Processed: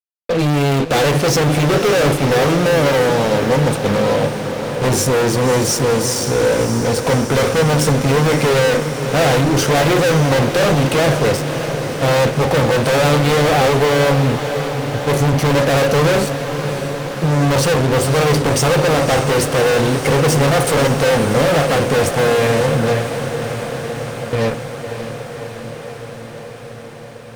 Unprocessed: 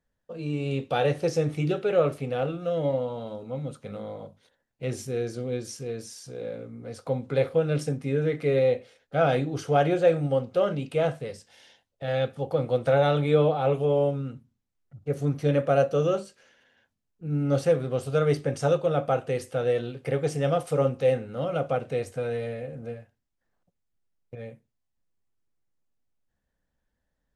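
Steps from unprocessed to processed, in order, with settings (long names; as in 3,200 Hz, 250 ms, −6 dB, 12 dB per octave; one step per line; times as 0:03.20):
fuzz pedal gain 41 dB, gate −48 dBFS
feedback delay with all-pass diffusion 579 ms, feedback 77%, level −9.5 dB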